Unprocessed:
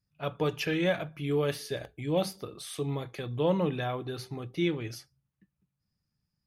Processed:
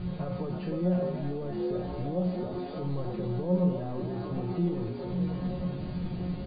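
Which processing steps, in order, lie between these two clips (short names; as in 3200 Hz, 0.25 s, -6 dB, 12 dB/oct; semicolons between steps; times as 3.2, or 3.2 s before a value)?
zero-crossing step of -33 dBFS; in parallel at +1 dB: compressor, threshold -33 dBFS, peak gain reduction 12 dB; on the sum: resonant high shelf 1500 Hz -8 dB, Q 1.5; notches 50/100/150/200/250/300/350/400 Hz; requantised 6-bit, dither triangular; frequency-shifting echo 0.305 s, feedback 57%, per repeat +68 Hz, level -7 dB; limiter -20.5 dBFS, peak gain reduction 9.5 dB; brick-wall FIR low-pass 4800 Hz; tilt shelf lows +9.5 dB, about 710 Hz; resonator 180 Hz, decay 0.38 s, harmonics all, mix 90%; gain +5 dB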